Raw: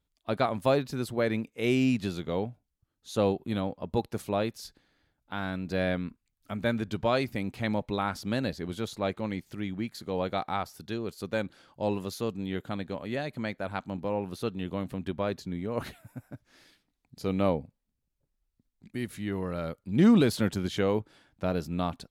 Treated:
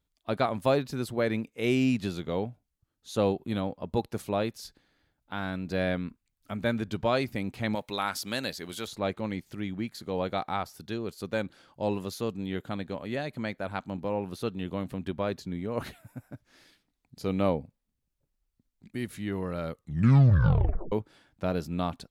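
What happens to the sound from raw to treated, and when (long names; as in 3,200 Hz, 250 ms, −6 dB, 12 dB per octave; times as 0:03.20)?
0:07.75–0:08.87: spectral tilt +3 dB per octave
0:19.69: tape stop 1.23 s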